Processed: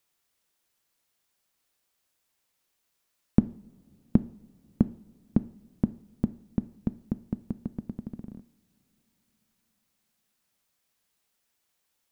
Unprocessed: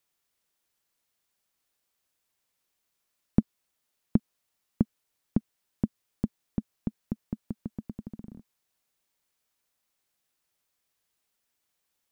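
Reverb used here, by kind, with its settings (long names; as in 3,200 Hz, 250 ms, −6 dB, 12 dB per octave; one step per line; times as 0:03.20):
coupled-rooms reverb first 0.54 s, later 4.7 s, from −22 dB, DRR 14 dB
level +2.5 dB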